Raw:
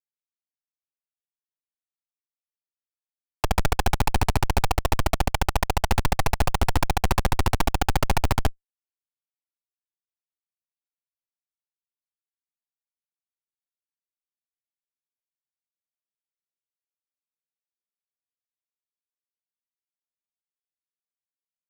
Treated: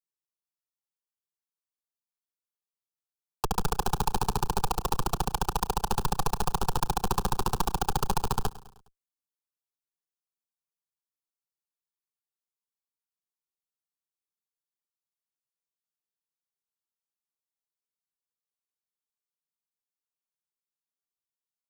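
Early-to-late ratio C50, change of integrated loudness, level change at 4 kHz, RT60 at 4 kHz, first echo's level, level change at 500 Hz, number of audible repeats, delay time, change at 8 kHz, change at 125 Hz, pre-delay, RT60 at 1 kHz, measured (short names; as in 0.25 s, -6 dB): none, -5.0 dB, -5.0 dB, none, -18.5 dB, -5.5 dB, 3, 0.103 s, -2.0 dB, -8.5 dB, none, none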